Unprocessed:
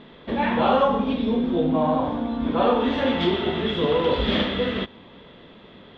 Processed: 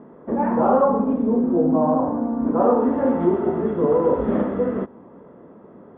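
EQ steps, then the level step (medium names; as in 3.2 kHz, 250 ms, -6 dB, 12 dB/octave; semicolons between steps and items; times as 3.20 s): high-pass 140 Hz 6 dB/octave; low-pass 1.3 kHz 24 dB/octave; peaking EQ 310 Hz +5 dB 2.1 oct; 0.0 dB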